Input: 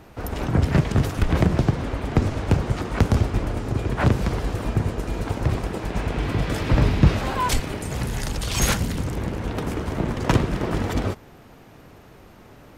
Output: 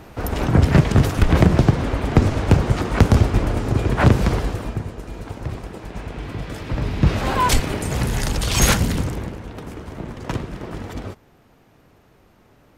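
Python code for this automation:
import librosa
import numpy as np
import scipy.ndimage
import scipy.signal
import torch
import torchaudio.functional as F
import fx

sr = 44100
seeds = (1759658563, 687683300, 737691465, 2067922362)

y = fx.gain(x, sr, db=fx.line((4.34, 5.0), (4.87, -6.0), (6.81, -6.0), (7.32, 5.0), (8.97, 5.0), (9.46, -7.0)))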